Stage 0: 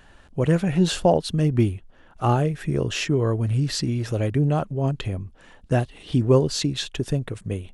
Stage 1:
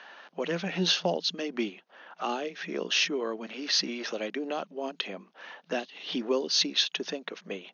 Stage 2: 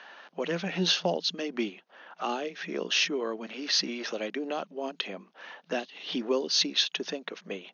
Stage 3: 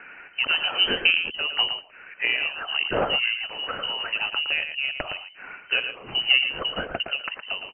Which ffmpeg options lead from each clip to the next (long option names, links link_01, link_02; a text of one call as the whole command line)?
ffmpeg -i in.wav -filter_complex "[0:a]acrossover=split=510 5300:gain=0.112 1 0.2[link_01][link_02][link_03];[link_01][link_02][link_03]amix=inputs=3:normalize=0,acrossover=split=310|3000[link_04][link_05][link_06];[link_05]acompressor=threshold=-47dB:ratio=2.5[link_07];[link_04][link_07][link_06]amix=inputs=3:normalize=0,afftfilt=real='re*between(b*sr/4096,170,6700)':imag='im*between(b*sr/4096,170,6700)':win_size=4096:overlap=0.75,volume=7.5dB" out.wav
ffmpeg -i in.wav -af anull out.wav
ffmpeg -i in.wav -filter_complex "[0:a]aeval=exprs='0.251*(cos(1*acos(clip(val(0)/0.251,-1,1)))-cos(1*PI/2))+0.0112*(cos(7*acos(clip(val(0)/0.251,-1,1)))-cos(7*PI/2))':channel_layout=same,asplit=2[link_01][link_02];[link_02]aecho=0:1:114:0.376[link_03];[link_01][link_03]amix=inputs=2:normalize=0,lowpass=frequency=2700:width_type=q:width=0.5098,lowpass=frequency=2700:width_type=q:width=0.6013,lowpass=frequency=2700:width_type=q:width=0.9,lowpass=frequency=2700:width_type=q:width=2.563,afreqshift=-3200,volume=8.5dB" out.wav